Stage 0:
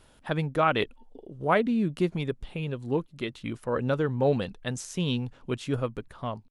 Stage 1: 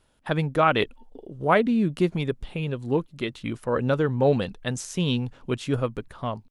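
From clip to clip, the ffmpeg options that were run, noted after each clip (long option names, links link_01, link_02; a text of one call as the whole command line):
ffmpeg -i in.wav -af "agate=range=-11dB:threshold=-51dB:ratio=16:detection=peak,volume=3.5dB" out.wav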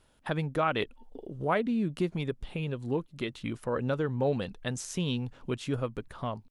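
ffmpeg -i in.wav -af "acompressor=threshold=-38dB:ratio=1.5" out.wav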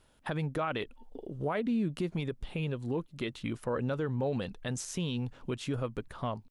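ffmpeg -i in.wav -af "alimiter=limit=-23.5dB:level=0:latency=1:release=40" out.wav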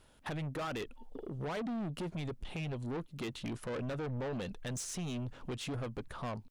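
ffmpeg -i in.wav -af "asoftclip=type=tanh:threshold=-37dB,volume=2dB" out.wav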